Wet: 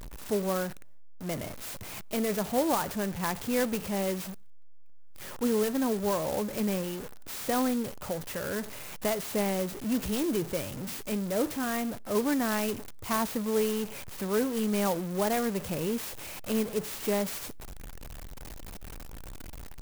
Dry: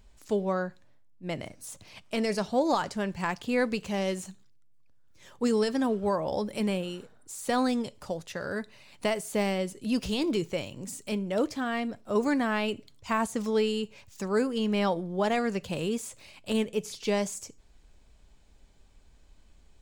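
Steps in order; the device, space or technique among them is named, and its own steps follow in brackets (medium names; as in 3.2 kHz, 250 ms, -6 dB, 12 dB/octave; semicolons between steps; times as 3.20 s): early CD player with a faulty converter (jump at every zero crossing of -33.5 dBFS; sampling jitter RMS 0.07 ms); trim -2.5 dB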